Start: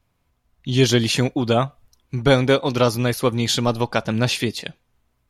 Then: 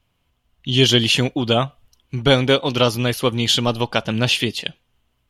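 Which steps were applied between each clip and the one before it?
peaking EQ 3 kHz +12 dB 0.36 oct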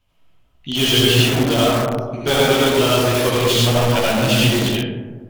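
chorus voices 4, 0.91 Hz, delay 15 ms, depth 4.6 ms; reverberation RT60 1.5 s, pre-delay 40 ms, DRR -6 dB; in parallel at -6 dB: integer overflow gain 14 dB; on the sum: trim -2 dB

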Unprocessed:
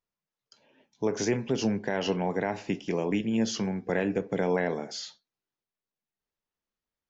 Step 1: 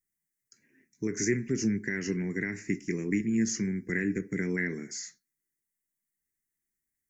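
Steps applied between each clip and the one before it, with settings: FFT filter 370 Hz 0 dB, 550 Hz -23 dB, 840 Hz -28 dB, 2 kHz +8 dB, 3.2 kHz -25 dB, 5.6 kHz +1 dB, 8 kHz +11 dB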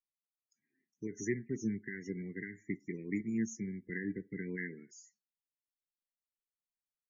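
loudest bins only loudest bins 32; upward expansion 1.5:1, over -45 dBFS; trim -6 dB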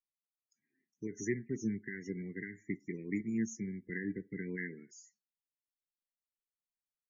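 no audible change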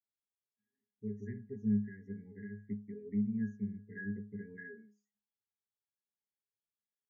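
pitch-class resonator G#, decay 0.31 s; trim +10.5 dB

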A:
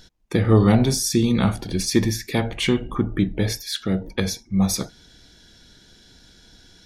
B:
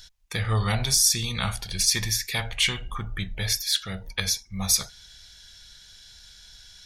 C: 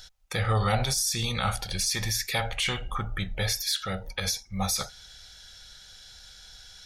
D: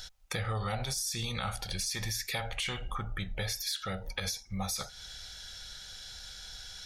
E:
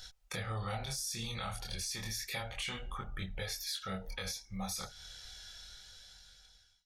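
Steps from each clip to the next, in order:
amplifier tone stack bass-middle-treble 10-0-10; trim +5.5 dB
peak limiter -17.5 dBFS, peak gain reduction 10.5 dB; small resonant body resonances 550/770/1300 Hz, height 10 dB, ringing for 30 ms
compression 3:1, threshold -38 dBFS, peak gain reduction 13.5 dB; trim +3 dB
fade out at the end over 1.45 s; chorus voices 2, 0.31 Hz, delay 24 ms, depth 3.2 ms; trim -1.5 dB

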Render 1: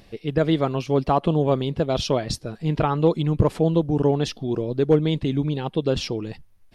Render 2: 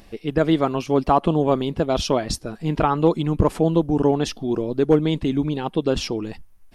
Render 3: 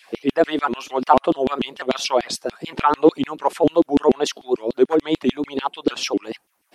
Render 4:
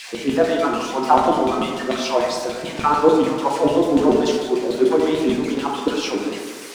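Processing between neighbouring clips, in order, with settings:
graphic EQ 125/500/2000/4000 Hz -10/-5/-3/-6 dB; trim +6 dB
in parallel at -3 dB: compression, threshold -26 dBFS, peak gain reduction 14.5 dB; on the sum: LFO high-pass saw down 6.8 Hz 230–3500 Hz; vibrato with a chosen wave saw up 4.4 Hz, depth 160 cents; trim -1.5 dB
zero-crossing glitches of -18.5 dBFS; distance through air 100 m; plate-style reverb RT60 1.6 s, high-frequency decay 0.35×, DRR -1.5 dB; trim -2.5 dB

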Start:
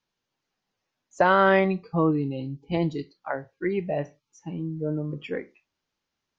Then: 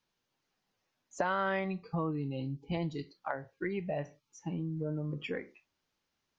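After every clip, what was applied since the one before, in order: dynamic bell 360 Hz, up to -5 dB, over -34 dBFS, Q 0.99; compression 2.5:1, threshold -34 dBFS, peak gain reduction 12 dB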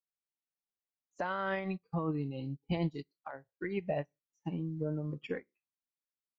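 peak limiter -26 dBFS, peak gain reduction 7 dB; upward expansion 2.5:1, over -52 dBFS; trim +4 dB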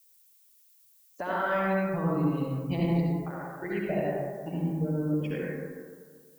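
reverberation RT60 1.8 s, pre-delay 58 ms, DRR -5.5 dB; added noise violet -61 dBFS

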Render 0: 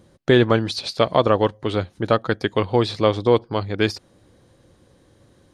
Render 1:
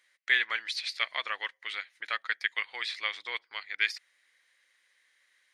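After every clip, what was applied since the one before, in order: resonant high-pass 2 kHz, resonance Q 5.9; trim -8.5 dB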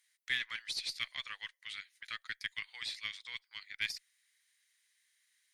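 differentiator; Chebyshev shaper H 6 -30 dB, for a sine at -19.5 dBFS; trim +1 dB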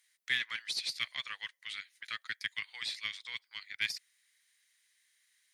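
high-pass 97 Hz 24 dB/octave; trim +2.5 dB

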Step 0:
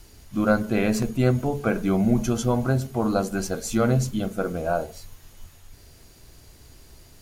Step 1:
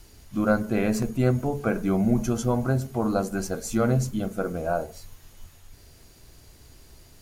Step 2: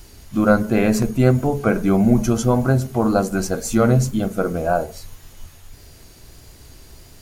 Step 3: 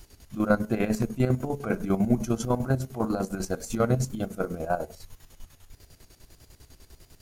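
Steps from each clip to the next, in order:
dynamic bell 3.4 kHz, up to -5 dB, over -48 dBFS, Q 1.3; trim -1.5 dB
wow and flutter 29 cents; trim +7 dB
square tremolo 10 Hz, depth 65%, duty 50%; trim -6.5 dB

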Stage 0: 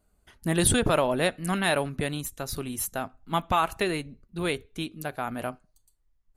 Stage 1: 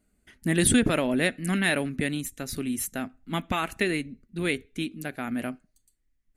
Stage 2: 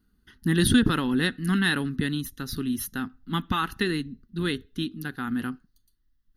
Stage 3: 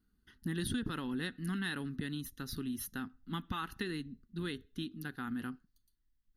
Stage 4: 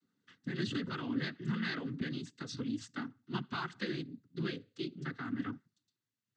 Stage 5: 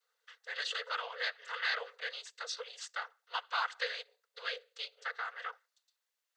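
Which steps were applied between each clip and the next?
ten-band graphic EQ 250 Hz +11 dB, 1 kHz -7 dB, 2 kHz +10 dB, 8 kHz +5 dB; trim -4 dB
static phaser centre 2.3 kHz, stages 6; trim +4 dB
compression 3:1, threshold -27 dBFS, peak gain reduction 9.5 dB; trim -8 dB
noise-vocoded speech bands 16; trim +1 dB
brick-wall FIR high-pass 440 Hz; trim +6 dB

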